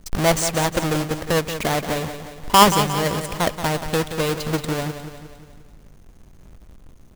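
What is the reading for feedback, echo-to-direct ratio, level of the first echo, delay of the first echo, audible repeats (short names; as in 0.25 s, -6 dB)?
53%, -8.5 dB, -10.0 dB, 0.178 s, 5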